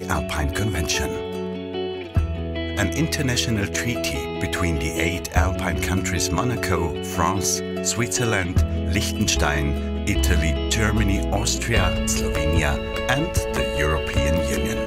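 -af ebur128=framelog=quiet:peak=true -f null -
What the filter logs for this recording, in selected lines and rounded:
Integrated loudness:
  I:         -22.5 LUFS
  Threshold: -32.5 LUFS
Loudness range:
  LRA:         2.7 LU
  Threshold: -42.3 LUFS
  LRA low:   -24.1 LUFS
  LRA high:  -21.4 LUFS
True peak:
  Peak:       -2.7 dBFS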